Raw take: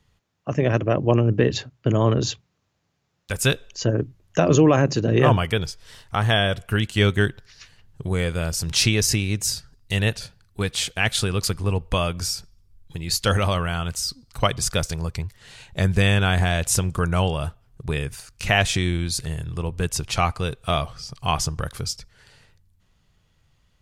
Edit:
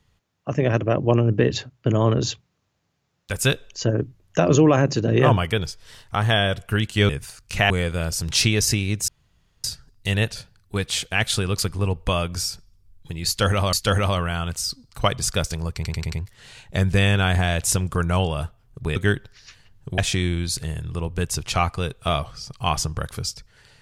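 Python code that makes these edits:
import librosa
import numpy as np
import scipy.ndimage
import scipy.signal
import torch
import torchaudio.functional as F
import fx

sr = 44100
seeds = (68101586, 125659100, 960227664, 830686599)

y = fx.edit(x, sr, fx.swap(start_s=7.09, length_s=1.02, other_s=17.99, other_length_s=0.61),
    fx.insert_room_tone(at_s=9.49, length_s=0.56),
    fx.repeat(start_s=13.12, length_s=0.46, count=2),
    fx.stutter(start_s=15.15, slice_s=0.09, count=5), tone=tone)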